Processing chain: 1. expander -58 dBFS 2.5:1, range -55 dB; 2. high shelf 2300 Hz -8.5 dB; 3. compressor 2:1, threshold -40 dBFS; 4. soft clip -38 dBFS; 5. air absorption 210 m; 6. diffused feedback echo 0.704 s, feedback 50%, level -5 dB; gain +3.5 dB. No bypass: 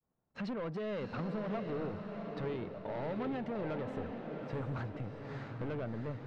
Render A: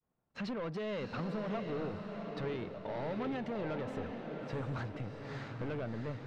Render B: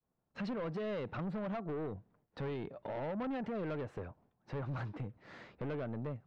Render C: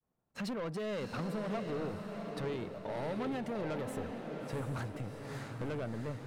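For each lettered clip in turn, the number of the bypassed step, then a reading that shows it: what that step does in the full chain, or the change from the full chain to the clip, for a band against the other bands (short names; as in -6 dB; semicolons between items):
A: 2, 4 kHz band +4.0 dB; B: 6, echo-to-direct -4.0 dB to none; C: 5, 4 kHz band +5.0 dB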